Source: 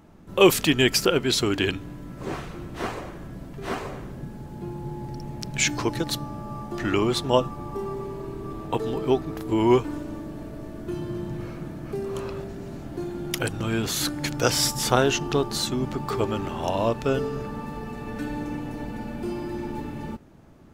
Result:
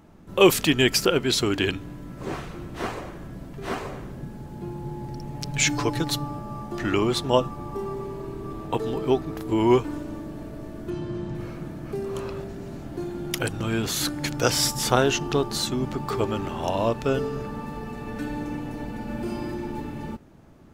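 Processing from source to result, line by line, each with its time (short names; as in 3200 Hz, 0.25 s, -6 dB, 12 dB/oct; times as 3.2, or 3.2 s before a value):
5.34–6.39 comb 6.9 ms, depth 57%
10.9–11.35 LPF 6600 Hz
19.05–19.54 doubler 41 ms -3 dB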